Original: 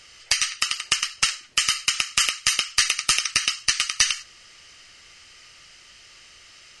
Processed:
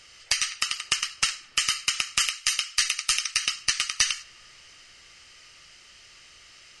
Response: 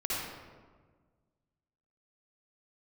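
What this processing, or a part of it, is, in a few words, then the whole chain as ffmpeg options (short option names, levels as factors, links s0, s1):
compressed reverb return: -filter_complex "[0:a]asplit=2[s0][s1];[1:a]atrim=start_sample=2205[s2];[s1][s2]afir=irnorm=-1:irlink=0,acompressor=threshold=0.0316:ratio=4,volume=0.15[s3];[s0][s3]amix=inputs=2:normalize=0,asettb=1/sr,asplit=3[s4][s5][s6];[s4]atrim=end=2.224[s7];[s5]atrim=start=2.22:end=3.47,asetpts=PTS-STARTPTS,afade=t=in:d=0.004:c=qsin,afade=t=out:st=1.246:d=0.004:c=qsin,equalizer=f=240:t=o:w=2.8:g=-14.5[s8];[s6]atrim=start=3.466[s9];[s7][s8]acrossfade=d=0.004:c1=hsin:c2=qsin[s10];[s10][s9]acrossfade=d=0.004:c1=qsin:c2=hsin,volume=0.668"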